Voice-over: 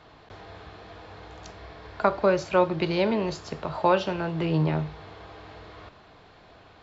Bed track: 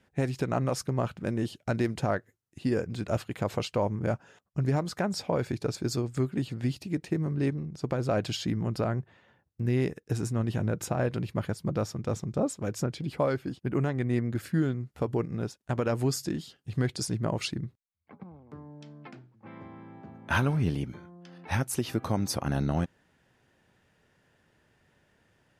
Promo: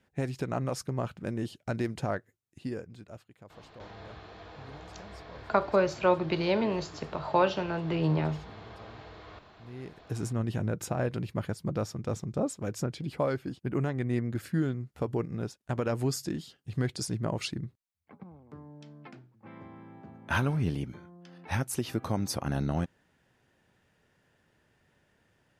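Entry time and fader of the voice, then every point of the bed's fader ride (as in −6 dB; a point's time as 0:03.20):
3.50 s, −3.0 dB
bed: 0:02.49 −3.5 dB
0:03.34 −22.5 dB
0:09.60 −22.5 dB
0:10.22 −2 dB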